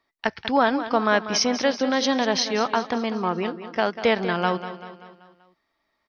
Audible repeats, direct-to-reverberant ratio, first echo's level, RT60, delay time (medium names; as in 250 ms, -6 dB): 4, no reverb, -12.0 dB, no reverb, 193 ms